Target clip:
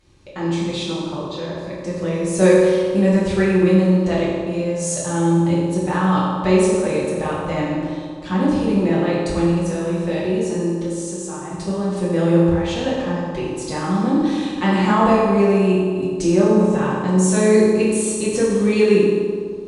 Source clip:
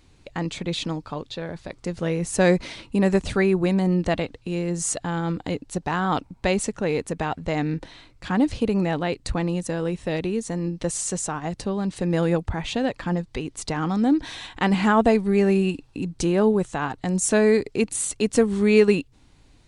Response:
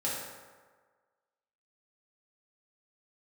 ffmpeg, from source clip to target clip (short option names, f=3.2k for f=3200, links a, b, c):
-filter_complex "[0:a]asettb=1/sr,asplit=3[a][b][c];[a]atrim=end=10.724[d];[b]atrim=start=10.72:end=11.52,asetpts=PTS-STARTPTS,afade=t=in:d=0.004:c=qsin,afade=t=out:st=0.796:d=0.004:c=qsin,acompressor=threshold=-31dB:ratio=6[e];[c]atrim=start=11.516[f];[d][e]acrossfade=d=0.004:c1=hsin:c2=qsin[g];[g][f]acrossfade=d=0.004:c1=qsin:c2=hsin[h];[1:a]atrim=start_sample=2205,asetrate=29547,aresample=44100[i];[h][i]afir=irnorm=-1:irlink=0,volume=-5dB"